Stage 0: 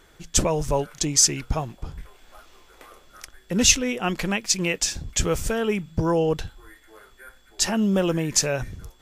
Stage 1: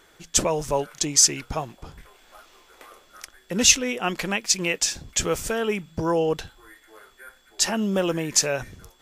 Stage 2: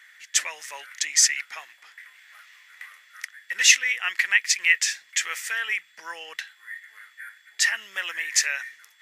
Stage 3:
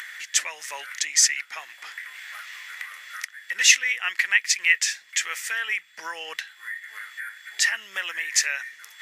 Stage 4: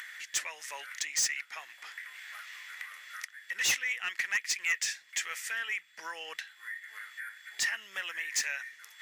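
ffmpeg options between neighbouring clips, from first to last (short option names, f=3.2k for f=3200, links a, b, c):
-af "lowshelf=f=170:g=-11.5,volume=1dB"
-af "highpass=f=1.9k:t=q:w=7.8,volume=-2.5dB"
-af "acompressor=mode=upward:threshold=-27dB:ratio=2.5"
-af "asoftclip=type=tanh:threshold=-16.5dB,volume=-6.5dB"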